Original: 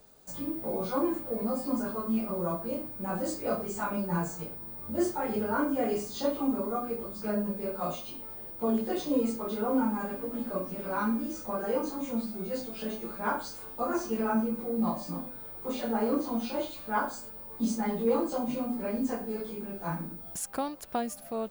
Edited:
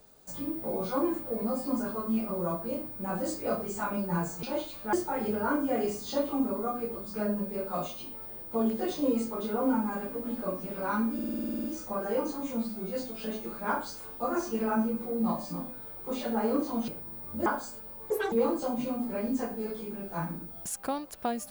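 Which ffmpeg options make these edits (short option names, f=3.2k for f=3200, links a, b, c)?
-filter_complex "[0:a]asplit=17[a][b][c][d][e][f][g][h][i][j][k][l][m][n][o][p][q];[a]atrim=end=4.432[r];[b]atrim=start=16.458:end=16.962[s];[c]atrim=start=5.008:end=11.272[t];[d]atrim=start=11.218:end=11.272[u];[e]atrim=start=11.218:end=11.272[v];[f]atrim=start=11.218:end=11.272[w];[g]atrim=start=11.218:end=11.272[x];[h]atrim=start=11.218:end=11.272[y];[i]atrim=start=11.218:end=11.272[z];[j]atrim=start=11.218:end=11.272[aa];[k]atrim=start=11.218:end=11.272[ab];[l]atrim=start=11.218:end=11.272[ac];[m]atrim=start=11.218:end=16.462[ad];[n]atrim=start=4.428:end=5.012[ae];[o]atrim=start=16.958:end=17.604[af];[p]atrim=start=17.6:end=18.02,asetpts=PTS-STARTPTS,asetrate=83790,aresample=44100,atrim=end_sample=9748,asetpts=PTS-STARTPTS[ag];[q]atrim=start=18.016[ah];[r][s]acrossfade=d=0.004:c1=hsin:c2=hsin[ai];[ai][t]acrossfade=d=0.004:c1=hsin:c2=hsin[aj];[aj][u]acrossfade=d=0.004:c1=hsin:c2=hsin[ak];[ak][v]acrossfade=d=0.004:c1=hsin:c2=hsin[al];[al][w]acrossfade=d=0.004:c1=hsin:c2=hsin[am];[am][x]acrossfade=d=0.004:c1=hsin:c2=hsin[an];[an][y]acrossfade=d=0.004:c1=hsin:c2=hsin[ao];[ao][z]acrossfade=d=0.004:c1=hsin:c2=hsin[ap];[ap][aa]acrossfade=d=0.004:c1=hsin:c2=hsin[aq];[aq][ab]acrossfade=d=0.004:c1=hsin:c2=hsin[ar];[ar][ac]acrossfade=d=0.004:c1=hsin:c2=hsin[as];[as][ad]acrossfade=d=0.004:c1=hsin:c2=hsin[at];[at][ae]acrossfade=d=0.004:c1=hsin:c2=hsin[au];[au][af]acrossfade=d=0.004:c1=hsin:c2=hsin[av];[av][ag]acrossfade=d=0.004:c1=hsin:c2=hsin[aw];[aw][ah]acrossfade=d=0.004:c1=hsin:c2=hsin"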